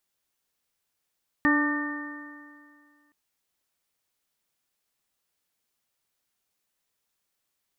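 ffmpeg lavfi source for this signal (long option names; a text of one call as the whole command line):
ffmpeg -f lavfi -i "aevalsrc='0.1*pow(10,-3*t/2.12)*sin(2*PI*292.29*t)+0.0178*pow(10,-3*t/2.12)*sin(2*PI*586.33*t)+0.0266*pow(10,-3*t/2.12)*sin(2*PI*883.85*t)+0.0447*pow(10,-3*t/2.12)*sin(2*PI*1186.54*t)+0.0112*pow(10,-3*t/2.12)*sin(2*PI*1496.05*t)+0.0891*pow(10,-3*t/2.12)*sin(2*PI*1813.98*t)':duration=1.67:sample_rate=44100" out.wav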